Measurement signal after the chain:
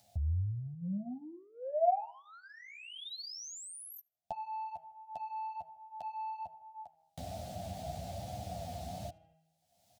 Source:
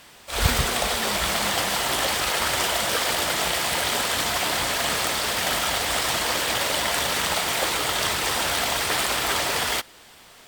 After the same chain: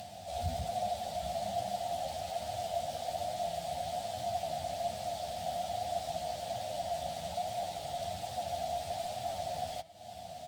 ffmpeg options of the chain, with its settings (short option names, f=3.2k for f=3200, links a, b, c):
-filter_complex "[0:a]highpass=f=67:w=0.5412,highpass=f=67:w=1.3066,bandreject=f=161.4:t=h:w=4,bandreject=f=322.8:t=h:w=4,bandreject=f=484.2:t=h:w=4,bandreject=f=645.6:t=h:w=4,bandreject=f=807:t=h:w=4,bandreject=f=968.4:t=h:w=4,bandreject=f=1.1298k:t=h:w=4,bandreject=f=1.2912k:t=h:w=4,bandreject=f=1.4526k:t=h:w=4,bandreject=f=1.614k:t=h:w=4,bandreject=f=1.7754k:t=h:w=4,bandreject=f=1.9368k:t=h:w=4,bandreject=f=2.0982k:t=h:w=4,bandreject=f=2.2596k:t=h:w=4,bandreject=f=2.421k:t=h:w=4,bandreject=f=2.5824k:t=h:w=4,bandreject=f=2.7438k:t=h:w=4,bandreject=f=2.9052k:t=h:w=4,bandreject=f=3.0666k:t=h:w=4,bandreject=f=3.228k:t=h:w=4,asplit=2[a][b];[b]acompressor=mode=upward:threshold=-26dB:ratio=2.5,volume=2dB[c];[a][c]amix=inputs=2:normalize=0,asoftclip=type=tanh:threshold=-14dB,asplit=2[d][e];[e]adelay=78,lowpass=f=3.8k:p=1,volume=-24dB,asplit=2[f][g];[g]adelay=78,lowpass=f=3.8k:p=1,volume=0.47,asplit=2[h][i];[i]adelay=78,lowpass=f=3.8k:p=1,volume=0.47[j];[f][h][j]amix=inputs=3:normalize=0[k];[d][k]amix=inputs=2:normalize=0,acompressor=threshold=-37dB:ratio=2,highshelf=f=8.6k:g=-7.5,flanger=delay=9.5:depth=3.1:regen=-4:speed=1.2:shape=sinusoidal,firequalizer=gain_entry='entry(160,0);entry(390,-22);entry(700,10);entry(1000,-24);entry(3800,-10)':delay=0.05:min_phase=1"